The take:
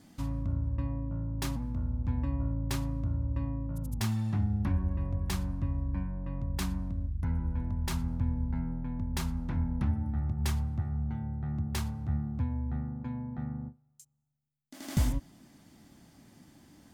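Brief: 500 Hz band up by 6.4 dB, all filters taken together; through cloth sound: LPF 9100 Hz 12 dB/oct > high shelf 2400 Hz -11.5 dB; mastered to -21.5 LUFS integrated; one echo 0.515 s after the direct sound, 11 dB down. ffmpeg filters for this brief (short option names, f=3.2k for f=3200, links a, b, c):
-af "lowpass=9.1k,equalizer=f=500:t=o:g=8.5,highshelf=f=2.4k:g=-11.5,aecho=1:1:515:0.282,volume=11.5dB"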